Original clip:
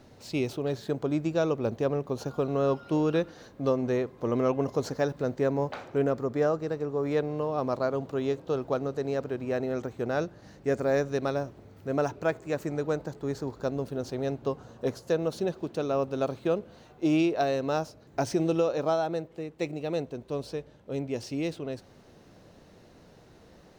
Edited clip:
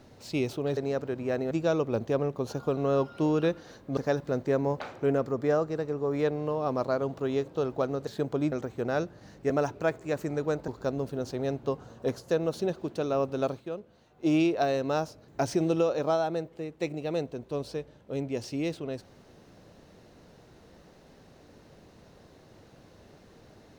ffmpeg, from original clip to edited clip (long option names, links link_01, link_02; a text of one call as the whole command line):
ffmpeg -i in.wav -filter_complex "[0:a]asplit=10[link_01][link_02][link_03][link_04][link_05][link_06][link_07][link_08][link_09][link_10];[link_01]atrim=end=0.772[link_11];[link_02]atrim=start=8.988:end=9.732[link_12];[link_03]atrim=start=1.218:end=3.682[link_13];[link_04]atrim=start=4.888:end=8.992[link_14];[link_05]atrim=start=0.768:end=1.222[link_15];[link_06]atrim=start=9.728:end=10.712[link_16];[link_07]atrim=start=11.908:end=13.092[link_17];[link_08]atrim=start=13.468:end=16.43,asetpts=PTS-STARTPTS,afade=type=out:start_time=2.812:duration=0.15:silence=0.334965[link_18];[link_09]atrim=start=16.43:end=16.92,asetpts=PTS-STARTPTS,volume=-9.5dB[link_19];[link_10]atrim=start=16.92,asetpts=PTS-STARTPTS,afade=type=in:duration=0.15:silence=0.334965[link_20];[link_11][link_12]acrossfade=duration=0.004:curve1=hsin:curve2=hsin[link_21];[link_21][link_13]acrossfade=duration=0.004:curve1=hsin:curve2=hsin[link_22];[link_22][link_14]acrossfade=duration=0.004:curve1=hsin:curve2=hsin[link_23];[link_23][link_15]acrossfade=duration=0.004:curve1=hsin:curve2=hsin[link_24];[link_24][link_16]acrossfade=duration=0.004:curve1=hsin:curve2=hsin[link_25];[link_25][link_17]acrossfade=duration=0.004:curve1=hsin:curve2=hsin[link_26];[link_18][link_19][link_20]concat=n=3:v=0:a=1[link_27];[link_26][link_27]acrossfade=duration=0.004:curve1=hsin:curve2=hsin" out.wav